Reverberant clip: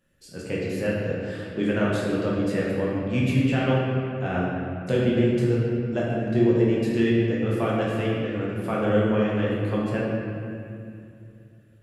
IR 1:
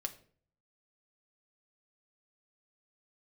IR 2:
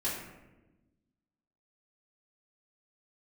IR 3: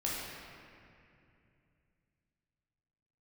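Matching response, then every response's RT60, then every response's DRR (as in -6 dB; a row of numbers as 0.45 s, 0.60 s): 3; 0.50 s, 1.1 s, 2.6 s; 5.5 dB, -8.5 dB, -6.0 dB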